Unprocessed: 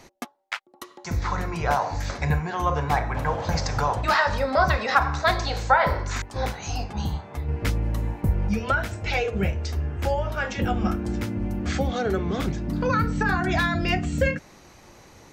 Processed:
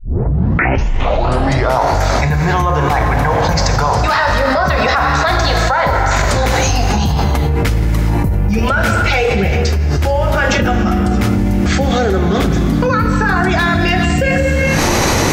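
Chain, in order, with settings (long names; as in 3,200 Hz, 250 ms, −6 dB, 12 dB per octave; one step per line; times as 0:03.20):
turntable start at the beginning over 1.91 s
reverb whose tail is shaped and stops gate 440 ms flat, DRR 6.5 dB
boost into a limiter +9.5 dB
envelope flattener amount 100%
level −5.5 dB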